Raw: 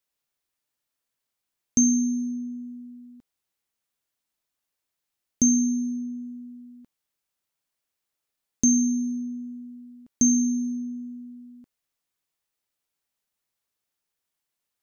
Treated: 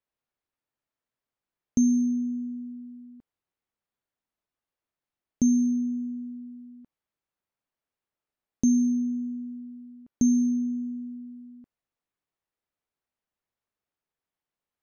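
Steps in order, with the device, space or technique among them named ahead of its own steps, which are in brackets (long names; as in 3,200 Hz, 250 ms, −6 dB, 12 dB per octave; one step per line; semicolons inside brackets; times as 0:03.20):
through cloth (high-shelf EQ 3,300 Hz −17.5 dB)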